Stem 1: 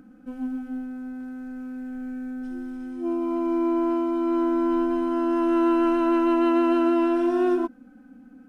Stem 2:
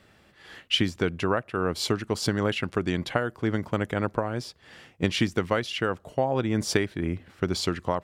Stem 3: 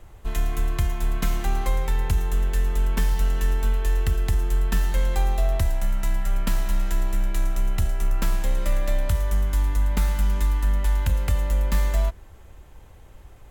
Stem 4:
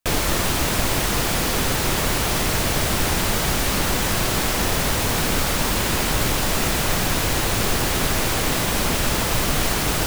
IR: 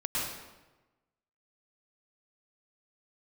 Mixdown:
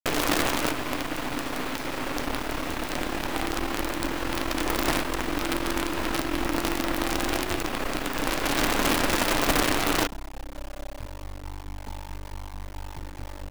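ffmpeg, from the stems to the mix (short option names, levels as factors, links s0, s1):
-filter_complex "[0:a]volume=0.251[s0];[1:a]aeval=exprs='0.0631*(abs(mod(val(0)/0.0631+3,4)-2)-1)':c=same,volume=0.15,asplit=2[s1][s2];[2:a]lowpass=f=840:t=q:w=4.9,adelay=1900,volume=0.211[s3];[3:a]bass=f=250:g=-11,treble=f=4000:g=-15,volume=0.841,asplit=2[s4][s5];[s5]volume=0.316[s6];[s2]apad=whole_len=444061[s7];[s4][s7]sidechaincompress=threshold=0.00126:ratio=3:attack=16:release=662[s8];[4:a]atrim=start_sample=2205[s9];[s6][s9]afir=irnorm=-1:irlink=0[s10];[s0][s1][s3][s8][s10]amix=inputs=5:normalize=0,acrusher=bits=4:dc=4:mix=0:aa=0.000001,equalizer=f=290:t=o:w=0.35:g=9.5"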